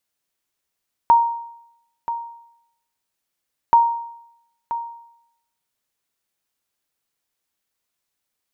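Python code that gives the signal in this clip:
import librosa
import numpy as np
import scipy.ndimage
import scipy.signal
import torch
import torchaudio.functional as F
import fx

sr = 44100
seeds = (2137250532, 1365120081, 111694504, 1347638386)

y = fx.sonar_ping(sr, hz=933.0, decay_s=0.78, every_s=2.63, pings=2, echo_s=0.98, echo_db=-12.5, level_db=-6.5)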